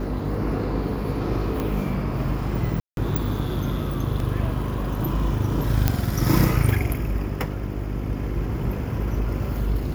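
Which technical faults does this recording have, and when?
mains hum 50 Hz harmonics 8 −29 dBFS
0:01.60: click −14 dBFS
0:02.80–0:02.97: drop-out 172 ms
0:04.20: drop-out 2.1 ms
0:05.88: click −4 dBFS

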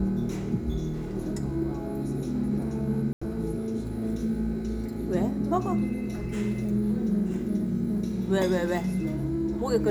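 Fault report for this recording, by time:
0:03.13–0:03.21: drop-out 85 ms

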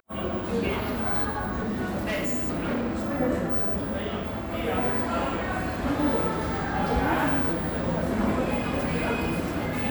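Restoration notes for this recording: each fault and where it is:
0:01.62–0:03.20: clipping −24.5 dBFS

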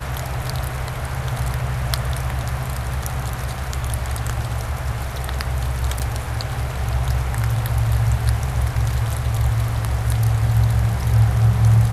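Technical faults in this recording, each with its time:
0:05.99–0:06.00: drop-out 7.8 ms

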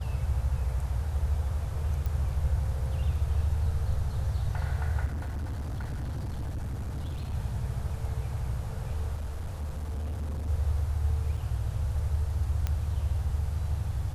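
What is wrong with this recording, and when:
0:02.06: click
0:05.05–0:07.35: clipping −30.5 dBFS
0:09.17–0:10.49: clipping −30 dBFS
0:11.37: drop-out 4 ms
0:12.67: click −17 dBFS

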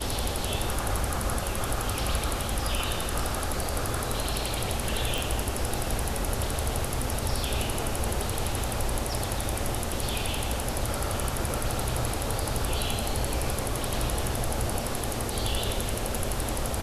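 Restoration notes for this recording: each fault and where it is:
0:05.18: click

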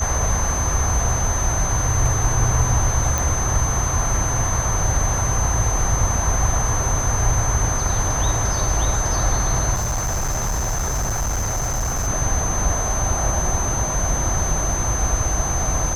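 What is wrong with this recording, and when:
whistle 6,200 Hz −24 dBFS
0:03.18: click
0:09.74–0:12.08: clipping −19 dBFS

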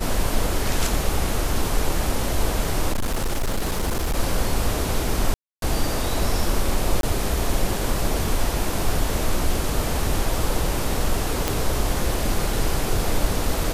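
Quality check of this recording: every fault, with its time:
0:02.92–0:04.15: clipping −19 dBFS
0:05.34–0:05.62: drop-out 282 ms
0:07.01–0:07.03: drop-out 22 ms
0:11.48: click

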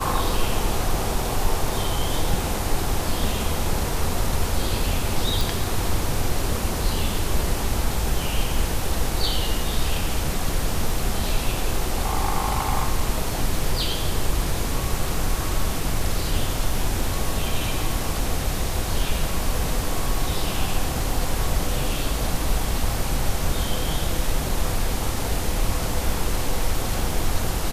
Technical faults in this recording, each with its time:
0:05.41: click

